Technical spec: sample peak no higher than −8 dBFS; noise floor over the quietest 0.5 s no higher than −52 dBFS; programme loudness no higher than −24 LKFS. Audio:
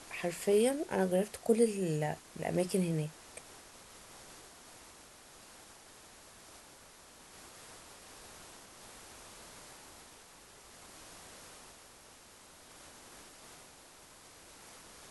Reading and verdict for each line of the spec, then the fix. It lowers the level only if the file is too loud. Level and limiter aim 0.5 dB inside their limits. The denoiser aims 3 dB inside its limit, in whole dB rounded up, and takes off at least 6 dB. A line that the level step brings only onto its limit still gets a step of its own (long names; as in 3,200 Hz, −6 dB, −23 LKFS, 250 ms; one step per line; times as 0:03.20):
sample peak −15.5 dBFS: in spec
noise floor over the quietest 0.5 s −57 dBFS: in spec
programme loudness −32.5 LKFS: in spec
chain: no processing needed